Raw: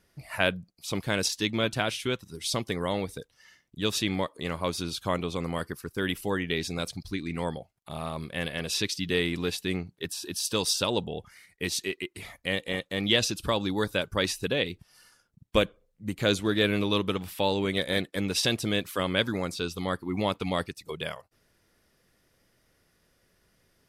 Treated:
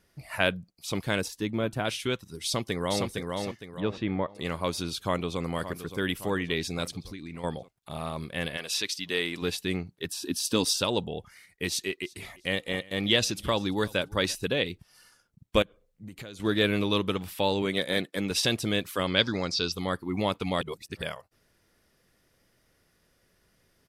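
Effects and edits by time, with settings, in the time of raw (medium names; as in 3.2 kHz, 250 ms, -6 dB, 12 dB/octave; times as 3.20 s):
1.21–1.85 s: peaking EQ 4.2 kHz -12.5 dB 2.4 oct
2.44–3.05 s: echo throw 460 ms, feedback 35%, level -3.5 dB
3.80–4.35 s: low-pass 1.6 kHz
4.98–5.40 s: echo throw 570 ms, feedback 60%, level -11.5 dB
7.00–7.44 s: compression, threshold -36 dBFS
8.56–9.41 s: high-pass 850 Hz -> 400 Hz 6 dB/octave
10.14–10.69 s: peaking EQ 260 Hz +11.5 dB 0.57 oct
11.69–14.35 s: feedback delay 343 ms, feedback 31%, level -23 dB
15.62–16.40 s: compression 16:1, threshold -38 dBFS
17.62–18.31 s: high-pass 130 Hz
19.07–19.72 s: resonant low-pass 5.1 kHz
20.61–21.02 s: reverse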